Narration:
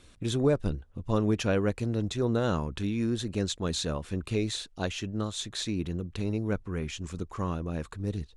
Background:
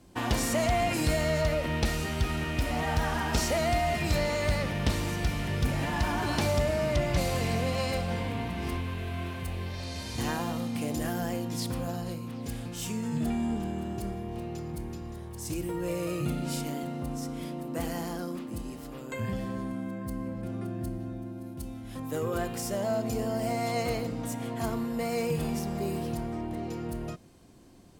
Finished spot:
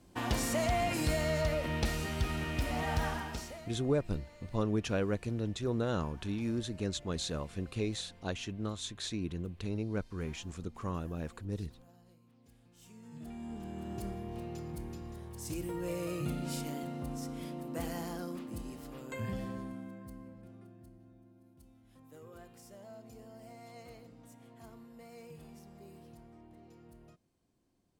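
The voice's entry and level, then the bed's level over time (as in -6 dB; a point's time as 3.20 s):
3.45 s, -5.5 dB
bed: 3.07 s -4.5 dB
3.81 s -27 dB
12.60 s -27 dB
13.98 s -5 dB
19.43 s -5 dB
20.83 s -21.5 dB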